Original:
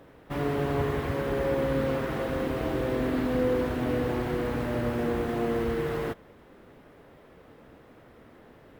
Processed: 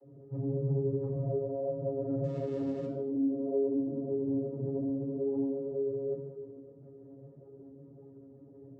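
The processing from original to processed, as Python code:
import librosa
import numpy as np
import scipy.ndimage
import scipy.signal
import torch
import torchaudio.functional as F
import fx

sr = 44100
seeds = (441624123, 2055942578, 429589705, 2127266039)

p1 = fx.spec_expand(x, sr, power=3.0)
p2 = fx.lowpass(p1, sr, hz=1000.0, slope=12, at=(3.7, 4.31))
p3 = fx.over_compress(p2, sr, threshold_db=-34.0, ratio=-0.5)
p4 = p2 + F.gain(torch.from_numpy(p3), -3.0).numpy()
p5 = fx.echo_thinned(p4, sr, ms=153, feedback_pct=67, hz=230.0, wet_db=-12.5)
p6 = fx.quant_companded(p5, sr, bits=4, at=(2.23, 2.85))
p7 = fx.vocoder(p6, sr, bands=16, carrier='saw', carrier_hz=137.0)
p8 = fx.room_shoebox(p7, sr, seeds[0], volume_m3=3700.0, walls='furnished', distance_m=4.2)
p9 = fx.ensemble(p8, sr)
y = F.gain(torch.from_numpy(p9), -7.5).numpy()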